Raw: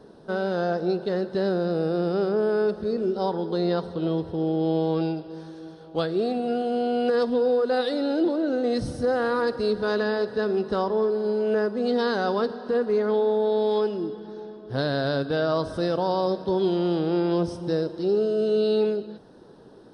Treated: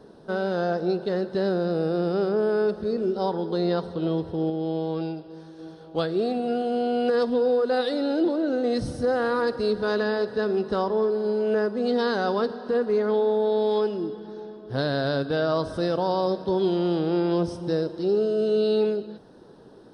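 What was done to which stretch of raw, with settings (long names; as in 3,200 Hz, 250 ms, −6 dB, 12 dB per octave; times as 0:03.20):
0:04.50–0:05.59: clip gain −4 dB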